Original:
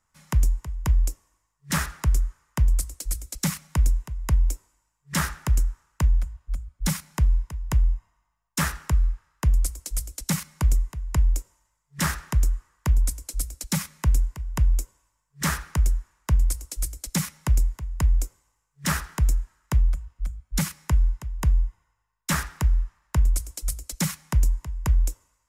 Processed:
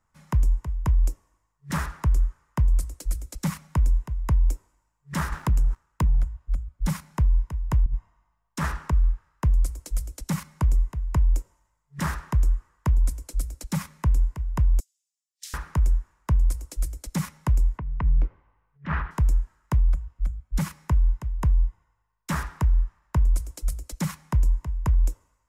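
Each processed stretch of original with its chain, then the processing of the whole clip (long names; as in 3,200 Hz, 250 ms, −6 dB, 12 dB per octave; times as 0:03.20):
0:05.32–0:06.24: downward compressor 5 to 1, threshold −26 dBFS + leveller curve on the samples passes 2
0:07.86–0:08.93: high-shelf EQ 10,000 Hz −7 dB + compressor whose output falls as the input rises −24 dBFS, ratio −0.5
0:14.80–0:15.54: inverse Chebyshev high-pass filter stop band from 650 Hz, stop band 80 dB + high-shelf EQ 11,000 Hz −10.5 dB
0:17.78–0:19.11: low-pass filter 2,700 Hz 24 dB per octave + dynamic equaliser 510 Hz, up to −4 dB, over −44 dBFS, Q 0.73 + transient designer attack −9 dB, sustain +6 dB
whole clip: dynamic equaliser 1,000 Hz, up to +5 dB, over −52 dBFS, Q 4.5; brickwall limiter −17 dBFS; high-shelf EQ 2,000 Hz −10.5 dB; level +3 dB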